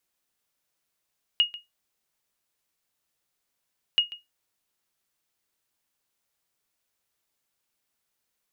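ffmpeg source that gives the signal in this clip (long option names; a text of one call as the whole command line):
ffmpeg -f lavfi -i "aevalsrc='0.237*(sin(2*PI*2870*mod(t,2.58))*exp(-6.91*mod(t,2.58)/0.18)+0.126*sin(2*PI*2870*max(mod(t,2.58)-0.14,0))*exp(-6.91*max(mod(t,2.58)-0.14,0)/0.18))':duration=5.16:sample_rate=44100" out.wav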